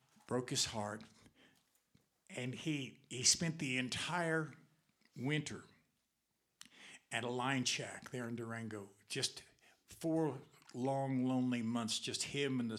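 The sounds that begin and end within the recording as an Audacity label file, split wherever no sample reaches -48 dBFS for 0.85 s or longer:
2.300000	5.600000	sound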